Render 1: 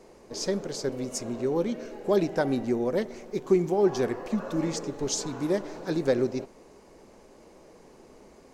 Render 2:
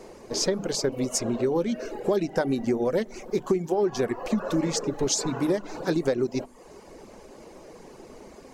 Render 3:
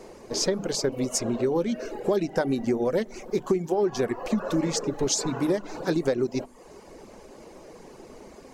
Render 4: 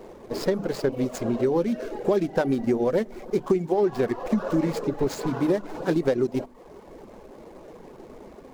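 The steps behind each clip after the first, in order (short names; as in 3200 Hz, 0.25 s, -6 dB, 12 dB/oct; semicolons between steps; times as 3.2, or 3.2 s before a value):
de-hum 49.47 Hz, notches 6; reverb removal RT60 0.57 s; compressor 6:1, threshold -29 dBFS, peak gain reduction 12 dB; gain +8 dB
nothing audible
median filter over 15 samples; gain +2 dB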